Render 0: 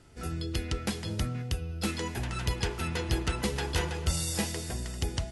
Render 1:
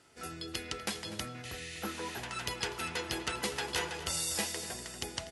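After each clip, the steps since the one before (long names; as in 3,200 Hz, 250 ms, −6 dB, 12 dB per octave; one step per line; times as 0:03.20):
high-pass filter 610 Hz 6 dB per octave
healed spectral selection 0:01.47–0:02.18, 1,700–11,000 Hz after
slap from a distant wall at 42 metres, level −13 dB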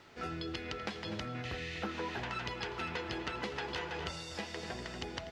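downward compressor, threshold −39 dBFS, peak gain reduction 10 dB
bit-depth reduction 10 bits, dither triangular
high-frequency loss of the air 200 metres
level +6 dB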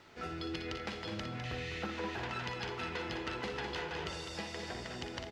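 in parallel at −11 dB: soft clipping −36.5 dBFS, distortion −12 dB
on the sum: loudspeakers that aren't time-aligned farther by 20 metres −9 dB, 70 metres −7 dB
level −3 dB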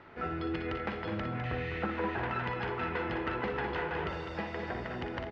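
Chebyshev low-pass filter 1,700 Hz, order 2
level +6.5 dB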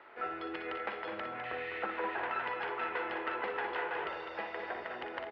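three-way crossover with the lows and the highs turned down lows −24 dB, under 380 Hz, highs −19 dB, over 4,300 Hz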